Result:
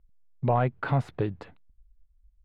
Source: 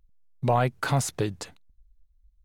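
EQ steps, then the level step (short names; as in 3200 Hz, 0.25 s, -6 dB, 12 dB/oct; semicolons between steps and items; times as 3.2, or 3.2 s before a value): air absorption 480 m; 0.0 dB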